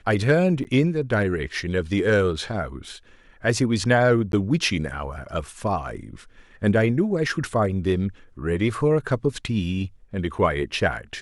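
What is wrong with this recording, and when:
0.64–0.65 gap 8.8 ms
4.32–4.33 gap 12 ms

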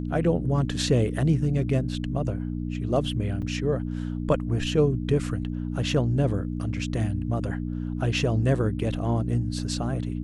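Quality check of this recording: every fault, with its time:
hum 60 Hz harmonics 5 -30 dBFS
3.42–3.43 gap 5.4 ms

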